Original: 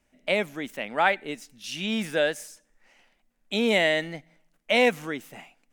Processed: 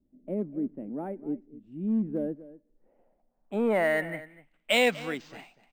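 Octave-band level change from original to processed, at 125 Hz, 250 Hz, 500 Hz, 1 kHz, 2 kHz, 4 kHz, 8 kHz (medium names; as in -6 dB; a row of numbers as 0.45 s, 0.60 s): 0.0 dB, +0.5 dB, -3.5 dB, -7.0 dB, -5.5 dB, -5.5 dB, -5.5 dB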